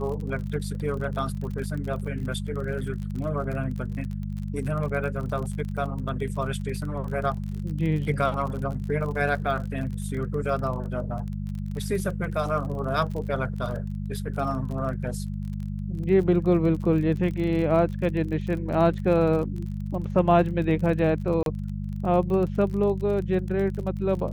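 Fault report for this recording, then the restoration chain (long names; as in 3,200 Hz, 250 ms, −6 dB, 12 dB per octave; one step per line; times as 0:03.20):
surface crackle 35 per second −33 dBFS
mains hum 50 Hz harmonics 4 −31 dBFS
0:21.43–0:21.46: drop-out 32 ms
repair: click removal
hum removal 50 Hz, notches 4
repair the gap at 0:21.43, 32 ms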